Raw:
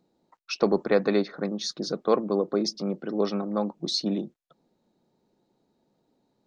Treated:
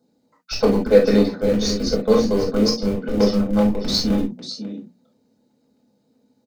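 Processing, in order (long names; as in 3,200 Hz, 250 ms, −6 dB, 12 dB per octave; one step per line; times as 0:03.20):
thirty-one-band graphic EQ 250 Hz +11 dB, 500 Hz +7 dB, 3,150 Hz −3 dB
auto-filter notch saw down 7.8 Hz 320–2,600 Hz
high-pass filter 75 Hz 12 dB per octave
bass and treble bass 0 dB, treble +5 dB
mains-hum notches 60/120/180/240 Hz
single-tap delay 545 ms −10 dB
in parallel at −9 dB: comparator with hysteresis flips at −21.5 dBFS
on the sum: convolution reverb, pre-delay 4 ms, DRR −3 dB
level −3 dB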